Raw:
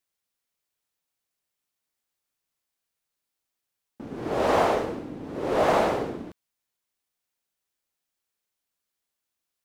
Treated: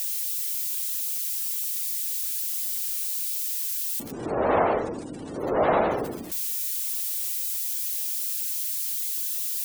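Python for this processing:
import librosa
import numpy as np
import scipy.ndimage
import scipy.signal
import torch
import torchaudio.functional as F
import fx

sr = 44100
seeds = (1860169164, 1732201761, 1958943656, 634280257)

y = x + 0.5 * 10.0 ** (-25.0 / 20.0) * np.diff(np.sign(x), prepend=np.sign(x[:1]))
y = fx.cheby1_lowpass(y, sr, hz=9300.0, order=3, at=(4.11, 5.4))
y = fx.spec_gate(y, sr, threshold_db=-25, keep='strong')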